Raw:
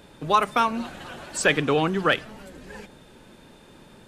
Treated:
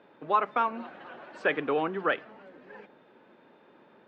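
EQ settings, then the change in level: band-pass 310–2100 Hz; distance through air 95 m; -4.0 dB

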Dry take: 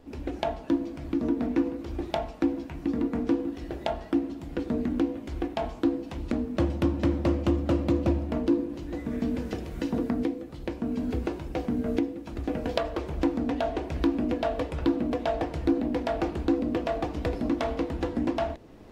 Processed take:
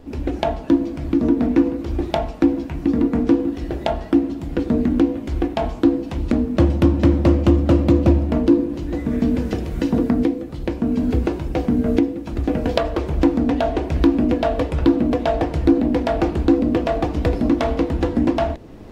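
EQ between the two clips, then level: bass shelf 310 Hz +5 dB; +7.0 dB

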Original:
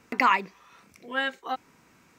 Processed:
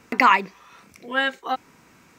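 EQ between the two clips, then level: flat; +5.5 dB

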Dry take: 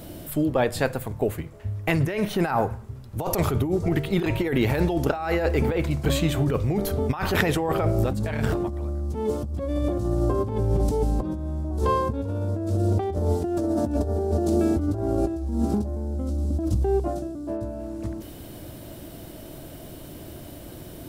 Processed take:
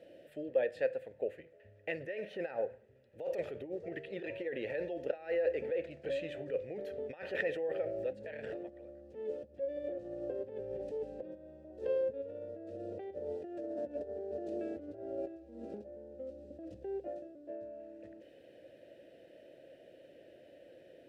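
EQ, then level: vowel filter e; treble shelf 9.3 kHz -4.5 dB; -2.5 dB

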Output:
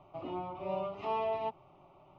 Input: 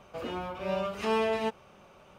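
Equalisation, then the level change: low-pass 2.2 kHz 12 dB/octave; distance through air 86 m; static phaser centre 320 Hz, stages 8; 0.0 dB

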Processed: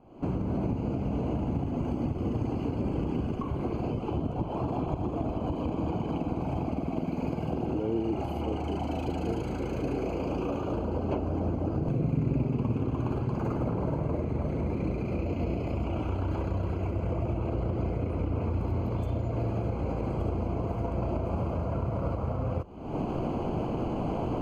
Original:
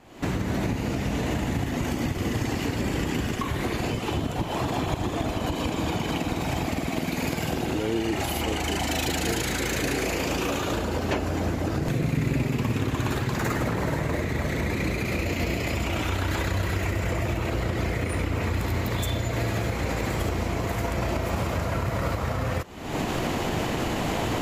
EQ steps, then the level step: boxcar filter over 24 samples; hum notches 50/100 Hz; -2.0 dB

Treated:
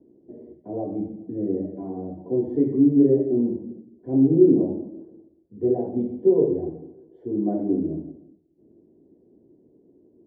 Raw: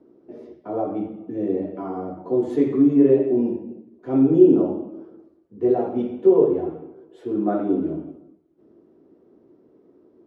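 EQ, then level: boxcar filter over 34 samples; bass shelf 280 Hz +8.5 dB; -4.5 dB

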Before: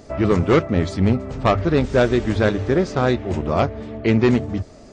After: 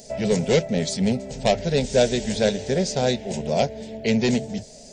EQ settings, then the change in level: tone controls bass -2 dB, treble +14 dB; static phaser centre 320 Hz, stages 6; 0.0 dB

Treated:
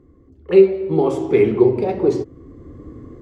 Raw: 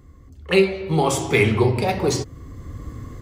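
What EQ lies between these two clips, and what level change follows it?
low-pass 1.8 kHz 6 dB/octave; peaking EQ 360 Hz +14.5 dB 1.3 oct; hum notches 50/100 Hz; -7.0 dB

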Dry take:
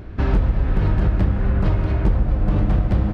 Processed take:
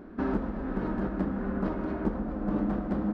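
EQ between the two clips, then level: resonant low shelf 160 Hz -12.5 dB, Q 3; resonant high shelf 1.9 kHz -7 dB, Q 1.5; -7.0 dB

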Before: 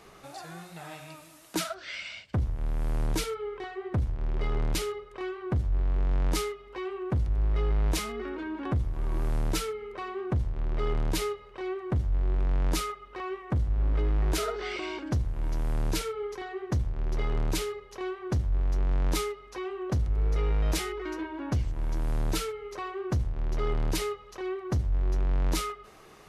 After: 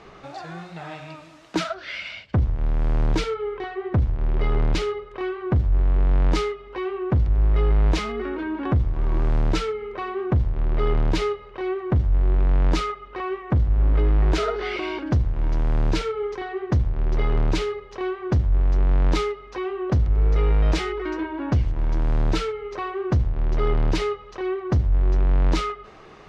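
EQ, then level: distance through air 150 m; +7.5 dB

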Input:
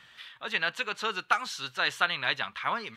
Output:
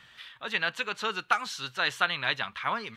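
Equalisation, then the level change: bass shelf 150 Hz +5.5 dB; 0.0 dB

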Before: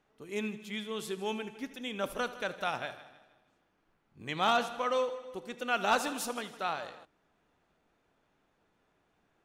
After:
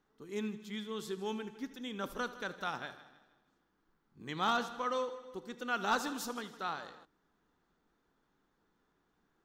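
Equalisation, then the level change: fifteen-band graphic EQ 100 Hz -9 dB, 630 Hz -10 dB, 2.5 kHz -10 dB, 10 kHz -10 dB; 0.0 dB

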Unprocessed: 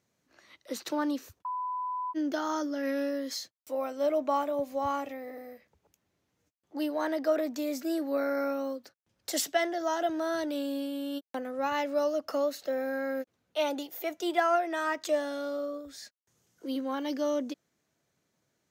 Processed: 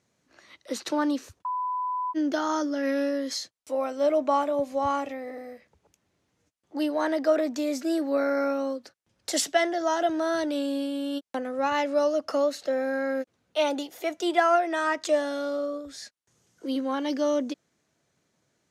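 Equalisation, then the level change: low-pass 11 kHz 24 dB/octave; +4.5 dB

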